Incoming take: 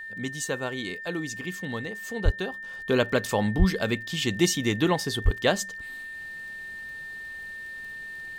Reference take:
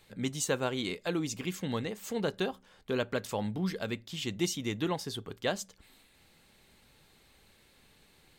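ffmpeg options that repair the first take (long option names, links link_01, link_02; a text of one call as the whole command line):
ffmpeg -i in.wav -filter_complex "[0:a]adeclick=threshold=4,bandreject=frequency=1800:width=30,asplit=3[link_01][link_02][link_03];[link_01]afade=type=out:start_time=2.24:duration=0.02[link_04];[link_02]highpass=frequency=140:width=0.5412,highpass=frequency=140:width=1.3066,afade=type=in:start_time=2.24:duration=0.02,afade=type=out:start_time=2.36:duration=0.02[link_05];[link_03]afade=type=in:start_time=2.36:duration=0.02[link_06];[link_04][link_05][link_06]amix=inputs=3:normalize=0,asplit=3[link_07][link_08][link_09];[link_07]afade=type=out:start_time=3.58:duration=0.02[link_10];[link_08]highpass=frequency=140:width=0.5412,highpass=frequency=140:width=1.3066,afade=type=in:start_time=3.58:duration=0.02,afade=type=out:start_time=3.7:duration=0.02[link_11];[link_09]afade=type=in:start_time=3.7:duration=0.02[link_12];[link_10][link_11][link_12]amix=inputs=3:normalize=0,asplit=3[link_13][link_14][link_15];[link_13]afade=type=out:start_time=5.24:duration=0.02[link_16];[link_14]highpass=frequency=140:width=0.5412,highpass=frequency=140:width=1.3066,afade=type=in:start_time=5.24:duration=0.02,afade=type=out:start_time=5.36:duration=0.02[link_17];[link_15]afade=type=in:start_time=5.36:duration=0.02[link_18];[link_16][link_17][link_18]amix=inputs=3:normalize=0,asetnsamples=nb_out_samples=441:pad=0,asendcmd='2.63 volume volume -8.5dB',volume=0dB" out.wav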